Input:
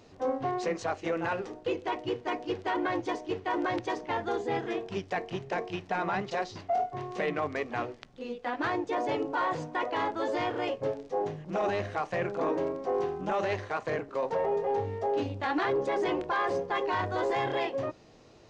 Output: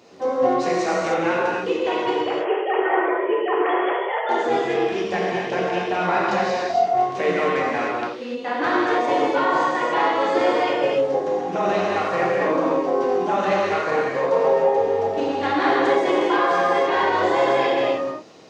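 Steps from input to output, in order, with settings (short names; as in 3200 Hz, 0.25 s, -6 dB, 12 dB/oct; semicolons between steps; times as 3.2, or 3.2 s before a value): 2.15–4.29 sine-wave speech; HPF 200 Hz 12 dB/oct; non-linear reverb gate 0.33 s flat, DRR -5.5 dB; gain +4.5 dB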